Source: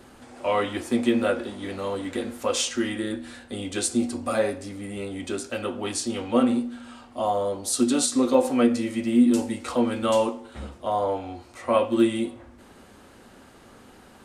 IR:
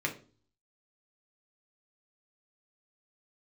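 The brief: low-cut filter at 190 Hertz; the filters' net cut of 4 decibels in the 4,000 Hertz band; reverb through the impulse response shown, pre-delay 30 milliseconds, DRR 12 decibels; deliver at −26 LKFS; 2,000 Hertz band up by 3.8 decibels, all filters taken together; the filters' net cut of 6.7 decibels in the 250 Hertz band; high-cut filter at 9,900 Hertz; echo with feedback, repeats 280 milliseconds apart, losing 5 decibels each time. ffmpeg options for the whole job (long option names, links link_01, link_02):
-filter_complex "[0:a]highpass=190,lowpass=9900,equalizer=frequency=250:width_type=o:gain=-6.5,equalizer=frequency=2000:width_type=o:gain=7,equalizer=frequency=4000:width_type=o:gain=-8,aecho=1:1:280|560|840|1120|1400|1680|1960:0.562|0.315|0.176|0.0988|0.0553|0.031|0.0173,asplit=2[link_01][link_02];[1:a]atrim=start_sample=2205,adelay=30[link_03];[link_02][link_03]afir=irnorm=-1:irlink=0,volume=-18.5dB[link_04];[link_01][link_04]amix=inputs=2:normalize=0,volume=0.5dB"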